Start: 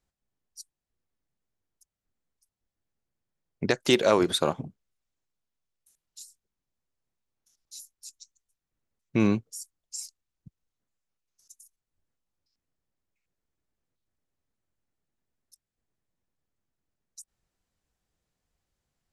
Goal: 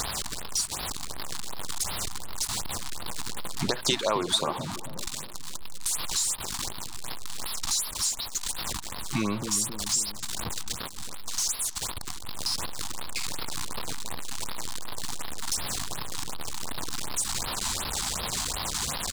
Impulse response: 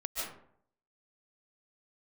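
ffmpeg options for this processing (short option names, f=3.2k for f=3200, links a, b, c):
-filter_complex "[0:a]aeval=exprs='val(0)+0.5*0.0299*sgn(val(0))':c=same,equalizer=f=1k:t=o:w=1:g=11,equalizer=f=4k:t=o:w=1:g=10,equalizer=f=8k:t=o:w=1:g=11,acompressor=threshold=-30dB:ratio=3,asplit=2[a][b];[b]adelay=269,lowpass=f=810:p=1,volume=-7.5dB,asplit=2[c][d];[d]adelay=269,lowpass=f=810:p=1,volume=0.54,asplit=2[e][f];[f]adelay=269,lowpass=f=810:p=1,volume=0.54,asplit=2[g][h];[h]adelay=269,lowpass=f=810:p=1,volume=0.54,asplit=2[i][j];[j]adelay=269,lowpass=f=810:p=1,volume=0.54,asplit=2[k][l];[l]adelay=269,lowpass=f=810:p=1,volume=0.54,asplit=2[m][n];[n]adelay=269,lowpass=f=810:p=1,volume=0.54[o];[a][c][e][g][i][k][m][o]amix=inputs=8:normalize=0,afftfilt=real='re*(1-between(b*sr/1024,440*pow(7800/440,0.5+0.5*sin(2*PI*2.7*pts/sr))/1.41,440*pow(7800/440,0.5+0.5*sin(2*PI*2.7*pts/sr))*1.41))':imag='im*(1-between(b*sr/1024,440*pow(7800/440,0.5+0.5*sin(2*PI*2.7*pts/sr))/1.41,440*pow(7800/440,0.5+0.5*sin(2*PI*2.7*pts/sr))*1.41))':win_size=1024:overlap=0.75,volume=3dB"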